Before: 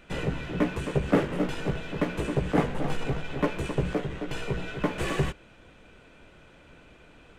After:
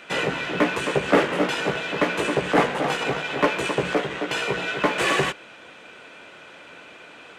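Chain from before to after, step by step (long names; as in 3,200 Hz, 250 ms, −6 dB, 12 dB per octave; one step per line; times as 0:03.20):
meter weighting curve A
in parallel at −3 dB: soft clipping −27 dBFS, distortion −10 dB
on the sum: level +7 dB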